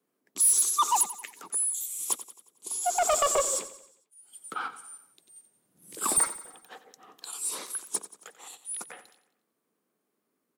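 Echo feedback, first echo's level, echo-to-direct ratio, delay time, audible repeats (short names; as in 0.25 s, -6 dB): 49%, -14.5 dB, -13.5 dB, 90 ms, 4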